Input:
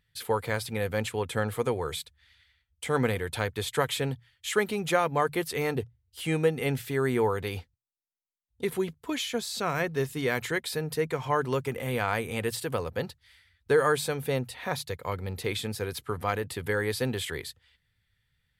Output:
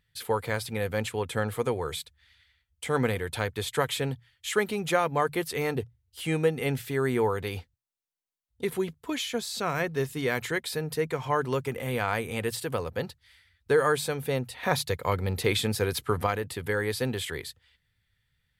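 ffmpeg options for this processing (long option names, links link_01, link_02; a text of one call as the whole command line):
ffmpeg -i in.wav -filter_complex "[0:a]asettb=1/sr,asplit=3[link_01][link_02][link_03];[link_01]atrim=end=14.634[link_04];[link_02]atrim=start=14.63:end=16.27,asetpts=PTS-STARTPTS,afade=type=in:duration=0.004:curve=qsin,afade=type=out:start_time=1.636:duration=0.004:curve=qsin,acontrast=39[link_05];[link_03]atrim=start=16.266[link_06];[link_04][link_05]acrossfade=duration=0.004:curve1=hsin:curve2=qsin[link_07];[link_07][link_06]acrossfade=duration=0.004:curve1=qsin:curve2=hsin" out.wav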